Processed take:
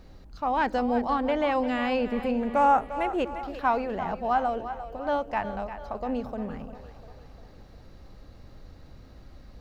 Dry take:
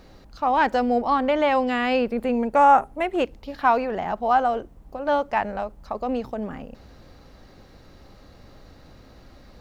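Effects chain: low shelf 170 Hz +8.5 dB; split-band echo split 390 Hz, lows 94 ms, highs 0.349 s, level -11.5 dB; gain -6 dB

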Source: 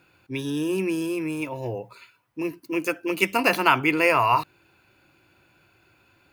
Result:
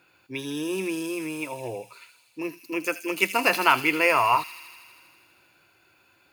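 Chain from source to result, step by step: low shelf 250 Hz -10.5 dB; on a send: thin delay 80 ms, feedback 78%, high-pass 4600 Hz, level -4 dB

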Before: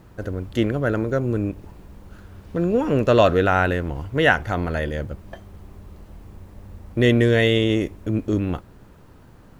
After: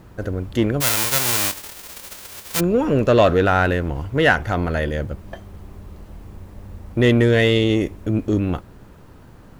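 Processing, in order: 0.8–2.59 spectral whitening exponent 0.1; in parallel at -3.5 dB: soft clip -18.5 dBFS, distortion -9 dB; on the sum: gain -1 dB

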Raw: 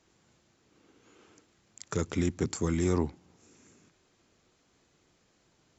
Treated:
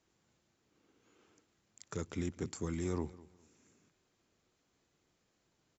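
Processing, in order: feedback echo 0.205 s, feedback 26%, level -20 dB; gain -9 dB

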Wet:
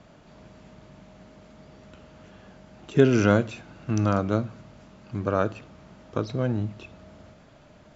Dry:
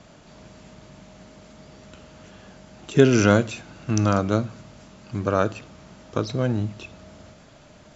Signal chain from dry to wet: LPF 2800 Hz 6 dB/oct; gain -2.5 dB

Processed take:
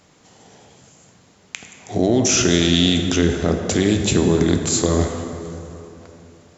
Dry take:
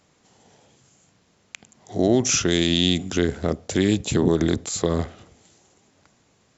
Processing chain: in parallel at -3 dB: negative-ratio compressor -26 dBFS, ratio -1; on the sum: plate-style reverb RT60 3.2 s, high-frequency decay 0.5×, DRR 4 dB

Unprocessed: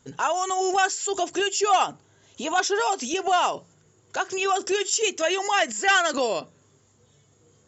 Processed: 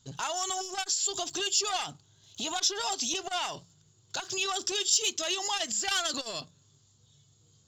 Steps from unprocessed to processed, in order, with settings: sample leveller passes 1; graphic EQ 125/250/500/1000/2000/4000 Hz +5/-5/-10/-3/-10/+11 dB; in parallel at -2 dB: compressor, threshold -30 dBFS, peak gain reduction 14.5 dB; on the sum: core saturation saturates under 1900 Hz; gain -7.5 dB

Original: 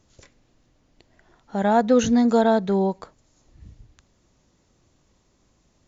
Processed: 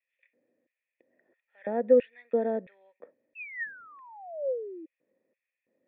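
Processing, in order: LFO high-pass square 1.5 Hz 250–2500 Hz; painted sound fall, 3.35–4.86, 310–2700 Hz -27 dBFS; vocal tract filter e

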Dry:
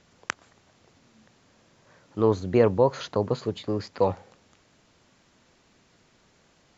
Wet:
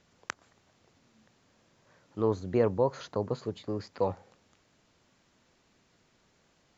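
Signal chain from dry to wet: dynamic EQ 3000 Hz, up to -4 dB, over -46 dBFS, Q 1.2; gain -6 dB

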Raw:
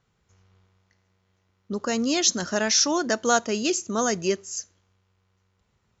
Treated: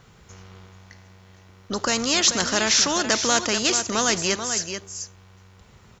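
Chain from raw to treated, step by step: echo 0.436 s -16 dB; spectral compressor 2:1; gain +1.5 dB

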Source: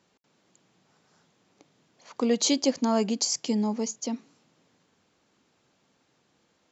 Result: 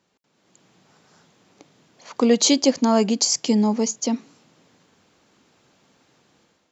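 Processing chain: AGC gain up to 10 dB; gain -1.5 dB

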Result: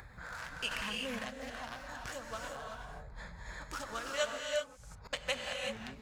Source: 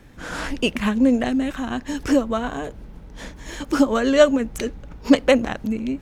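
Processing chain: Wiener smoothing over 15 samples; HPF 75 Hz 12 dB/oct; passive tone stack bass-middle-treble 10-0-10; upward compressor, threshold -30 dBFS; flange 1.3 Hz, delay 2.3 ms, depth 6.7 ms, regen -53%; 4.33–5.13 flipped gate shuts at -35 dBFS, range -29 dB; non-linear reverb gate 0.4 s rising, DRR 1 dB; 0.71–1.19 fast leveller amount 100%; gain -3.5 dB

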